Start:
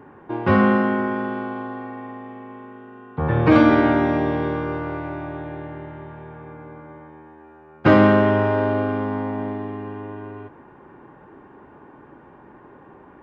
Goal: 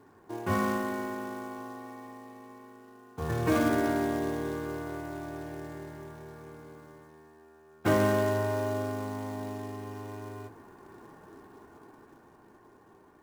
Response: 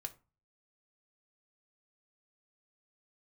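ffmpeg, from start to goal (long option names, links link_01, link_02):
-filter_complex "[0:a]acrusher=bits=4:mode=log:mix=0:aa=0.000001,dynaudnorm=framelen=260:gausssize=13:maxgain=7.5dB[link_01];[1:a]atrim=start_sample=2205,asetrate=42777,aresample=44100[link_02];[link_01][link_02]afir=irnorm=-1:irlink=0,volume=-9dB"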